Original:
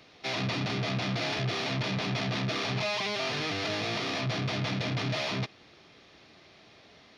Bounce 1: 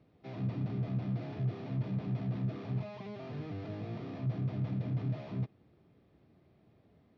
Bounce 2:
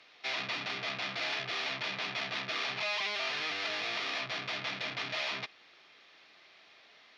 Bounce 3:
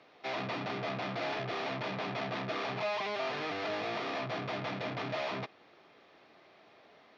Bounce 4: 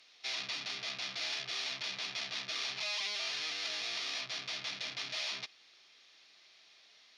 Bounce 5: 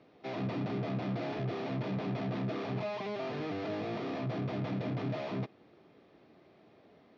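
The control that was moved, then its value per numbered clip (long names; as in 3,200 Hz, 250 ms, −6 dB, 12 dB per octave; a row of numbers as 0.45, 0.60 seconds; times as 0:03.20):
resonant band-pass, frequency: 100, 2,200, 810, 6,100, 320 Hertz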